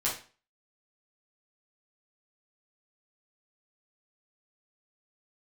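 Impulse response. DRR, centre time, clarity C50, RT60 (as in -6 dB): -7.5 dB, 30 ms, 6.5 dB, 0.40 s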